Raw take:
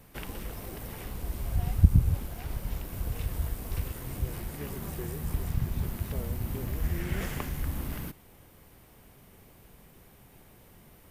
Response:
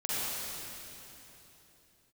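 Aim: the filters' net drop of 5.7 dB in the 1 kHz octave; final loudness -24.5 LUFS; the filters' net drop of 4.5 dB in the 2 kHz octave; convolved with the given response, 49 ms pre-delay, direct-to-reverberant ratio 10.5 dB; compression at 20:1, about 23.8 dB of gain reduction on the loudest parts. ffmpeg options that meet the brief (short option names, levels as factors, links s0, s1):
-filter_complex "[0:a]equalizer=f=1000:t=o:g=-7,equalizer=f=2000:t=o:g=-3.5,acompressor=threshold=0.0178:ratio=20,asplit=2[s0][s1];[1:a]atrim=start_sample=2205,adelay=49[s2];[s1][s2]afir=irnorm=-1:irlink=0,volume=0.119[s3];[s0][s3]amix=inputs=2:normalize=0,volume=7.5"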